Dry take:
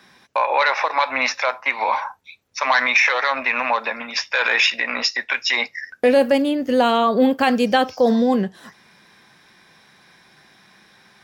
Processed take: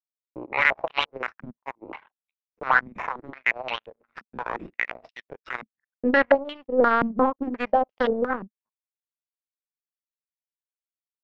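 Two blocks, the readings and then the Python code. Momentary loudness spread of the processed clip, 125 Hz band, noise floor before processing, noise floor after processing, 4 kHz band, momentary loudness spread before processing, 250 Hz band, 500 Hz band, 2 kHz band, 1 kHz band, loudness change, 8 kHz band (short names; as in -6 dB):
20 LU, n/a, -54 dBFS, under -85 dBFS, -13.5 dB, 8 LU, -9.0 dB, -6.0 dB, -6.5 dB, -6.5 dB, -6.0 dB, under -25 dB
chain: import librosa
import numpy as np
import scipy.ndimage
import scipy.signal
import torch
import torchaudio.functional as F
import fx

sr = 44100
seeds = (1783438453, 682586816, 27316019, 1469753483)

y = fx.power_curve(x, sr, exponent=3.0)
y = fx.filter_held_lowpass(y, sr, hz=5.7, low_hz=220.0, high_hz=3000.0)
y = F.gain(torch.from_numpy(y), -1.5).numpy()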